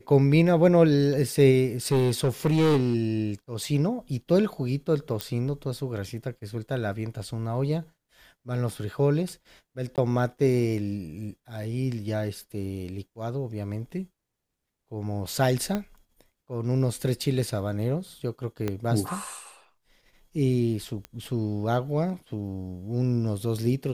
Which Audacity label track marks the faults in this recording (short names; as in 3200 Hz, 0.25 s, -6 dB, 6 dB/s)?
1.920000	2.940000	clipped -18 dBFS
5.210000	5.210000	pop -11 dBFS
9.960000	9.980000	gap 18 ms
15.750000	15.750000	pop -15 dBFS
18.680000	18.680000	pop -15 dBFS
21.050000	21.050000	pop -22 dBFS